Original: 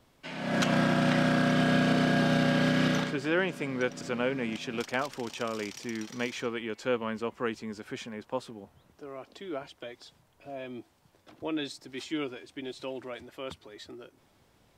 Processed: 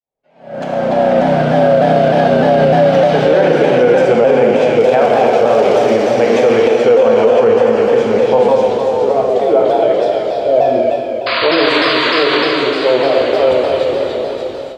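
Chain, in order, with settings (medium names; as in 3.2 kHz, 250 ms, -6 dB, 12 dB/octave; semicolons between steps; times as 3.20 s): fade-in on the opening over 4.58 s; on a send: repeats whose band climbs or falls 292 ms, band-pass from 3.3 kHz, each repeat 0.7 oct, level -0.5 dB; on the sum: painted sound noise, 11.26–12.43 s, 940–4900 Hz -28 dBFS; treble shelf 3.2 kHz -11 dB; plate-style reverb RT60 4.4 s, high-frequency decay 0.9×, DRR -3.5 dB; level rider gain up to 16 dB; high-order bell 600 Hz +13 dB 1.2 oct; loudness maximiser +1 dB; vibrato with a chosen wave saw down 3.3 Hz, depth 100 cents; trim -1 dB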